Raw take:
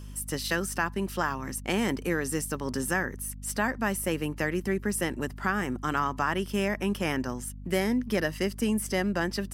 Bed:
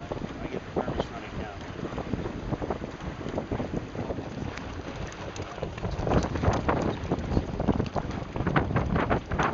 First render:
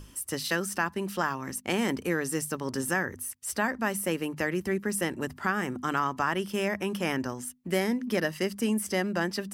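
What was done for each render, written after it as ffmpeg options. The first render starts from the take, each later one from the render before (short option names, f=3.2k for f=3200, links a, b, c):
-af "bandreject=f=50:t=h:w=6,bandreject=f=100:t=h:w=6,bandreject=f=150:t=h:w=6,bandreject=f=200:t=h:w=6,bandreject=f=250:t=h:w=6"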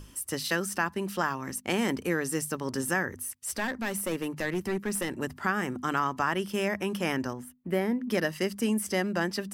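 -filter_complex "[0:a]asettb=1/sr,asplit=3[a][b][c];[a]atrim=end=3.214[d];[b]atrim=start=3.21:end=5.09,asetpts=PTS-STARTPTS,afade=t=in:d=0.004:c=qsin,afade=t=out:st=1.876:d=0.004:c=qsin,aeval=exprs='clip(val(0),-1,0.0447)':c=same[e];[c]atrim=start=5.086[f];[d][e]acrossfade=d=0.004:c1=hsin:c2=qsin[g];[g][f]acrossfade=d=0.004:c1=qsin:c2=hsin,asettb=1/sr,asplit=3[h][i][j];[h]atrim=end=7.334[k];[i]atrim=start=7.33:end=8.1,asetpts=PTS-STARTPTS,afade=t=in:d=0.004:c=qsin,afade=t=out:st=0.766:d=0.004:c=qsin,equalizer=f=6.6k:t=o:w=2:g=-15[l];[j]atrim=start=8.096[m];[k][l]acrossfade=d=0.004:c1=hsin:c2=qsin[n];[n][m]acrossfade=d=0.004:c1=qsin:c2=hsin"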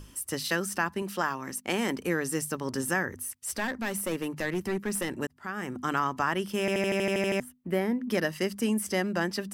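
-filter_complex "[0:a]asettb=1/sr,asplit=3[a][b][c];[a]atrim=end=1.024[d];[b]atrim=start=1.02:end=2.04,asetpts=PTS-STARTPTS,afade=t=in:d=0.004:c=qsin,afade=t=out:st=1.016:d=0.004:c=qsin,highpass=f=180:p=1[e];[c]atrim=start=2.036[f];[d][e]acrossfade=d=0.004:c1=hsin:c2=qsin[g];[g][f]acrossfade=d=0.004:c1=qsin:c2=hsin,asplit=12[h][i][j][k][l][m][n][o][p][q][r][s];[h]atrim=end=5.27,asetpts=PTS-STARTPTS,afade=t=out:st=5.266:d=0.004:c=hsin[t];[i]atrim=start=5.27:end=6.682,asetpts=PTS-STARTPTS,afade=t=in:d=0.58[u];[j]atrim=start=6.598:end=6.682[v];[k]atrim=start=6.598:end=6.682[w];[l]atrim=start=6.598:end=6.682[x];[m]atrim=start=6.598:end=6.682[y];[n]atrim=start=6.598:end=6.682[z];[o]atrim=start=6.598:end=6.682[aa];[p]atrim=start=6.598:end=6.682[ab];[q]atrim=start=6.598:end=6.682[ac];[r]atrim=start=6.598:end=6.682[ad];[s]atrim=start=7.398[ae];[t][u]concat=n=2:v=0:a=1[af];[af][v]acrossfade=d=0.004:c1=hsin:c2=hsin[ag];[ag][w]acrossfade=d=0.004:c1=hsin:c2=hsin[ah];[ah][x]acrossfade=d=0.004:c1=hsin:c2=hsin[ai];[ai][y]acrossfade=d=0.004:c1=hsin:c2=hsin[aj];[aj][z]acrossfade=d=0.004:c1=hsin:c2=hsin[ak];[ak][aa]acrossfade=d=0.004:c1=hsin:c2=hsin[al];[al][ab]acrossfade=d=0.004:c1=hsin:c2=hsin[am];[am][ac]acrossfade=d=0.004:c1=hsin:c2=hsin[an];[an][ad]acrossfade=d=0.004:c1=hsin:c2=hsin[ao];[ao][ae]acrossfade=d=0.004:c1=hsin:c2=hsin"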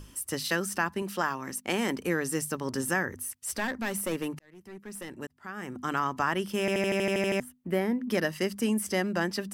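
-filter_complex "[0:a]asplit=2[a][b];[a]atrim=end=4.39,asetpts=PTS-STARTPTS,afade=t=out:st=4.386:d=0.004:c=hsin[c];[b]atrim=start=4.39,asetpts=PTS-STARTPTS,afade=t=in:d=1.83[d];[c][d]concat=n=2:v=0:a=1"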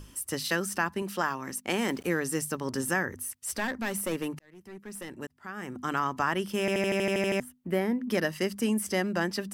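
-filter_complex "[0:a]asettb=1/sr,asplit=3[a][b][c];[a]atrim=end=1.804[d];[b]atrim=start=1.8:end=2.2,asetpts=PTS-STARTPTS,afade=t=in:d=0.004:c=qsin,afade=t=out:st=0.396:d=0.004:c=qsin,aeval=exprs='val(0)*gte(abs(val(0)),0.00398)':c=same[e];[c]atrim=start=2.196[f];[d][e]acrossfade=d=0.004:c1=hsin:c2=qsin[g];[g][f]acrossfade=d=0.004:c1=qsin:c2=hsin"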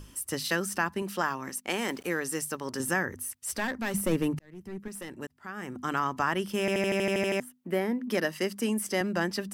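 -filter_complex "[0:a]asettb=1/sr,asplit=3[a][b][c];[a]atrim=end=1.494[d];[b]atrim=start=1.49:end=2.8,asetpts=PTS-STARTPTS,afade=t=in:d=0.004:c=qsin,afade=t=out:st=1.306:d=0.004:c=qsin,lowshelf=f=260:g=-8.5[e];[c]atrim=start=2.796[f];[d][e]acrossfade=d=0.004:c1=hsin:c2=qsin[g];[g][f]acrossfade=d=0.004:c1=qsin:c2=hsin,asettb=1/sr,asplit=3[h][i][j];[h]atrim=end=3.944[k];[i]atrim=start=3.94:end=4.88,asetpts=PTS-STARTPTS,afade=t=in:d=0.004:c=qsin,afade=t=out:st=0.936:d=0.004:c=qsin,lowshelf=f=310:g=11[l];[j]atrim=start=4.876[m];[k][l]acrossfade=d=0.004:c1=hsin:c2=qsin[n];[n][m]acrossfade=d=0.004:c1=qsin:c2=hsin,asettb=1/sr,asplit=3[o][p][q];[o]atrim=end=7.234[r];[p]atrim=start=7.23:end=9.01,asetpts=PTS-STARTPTS,afade=t=in:d=0.004:c=qsin,afade=t=out:st=1.776:d=0.004:c=qsin,highpass=190[s];[q]atrim=start=9.006[t];[r][s]acrossfade=d=0.004:c1=hsin:c2=qsin[u];[u][t]acrossfade=d=0.004:c1=qsin:c2=hsin"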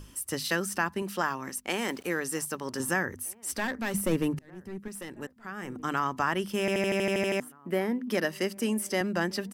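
-filter_complex "[0:a]asplit=2[a][b];[b]adelay=1574,volume=-24dB,highshelf=f=4k:g=-35.4[c];[a][c]amix=inputs=2:normalize=0"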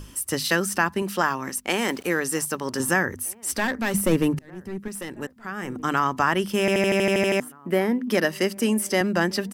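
-af "volume=6.5dB"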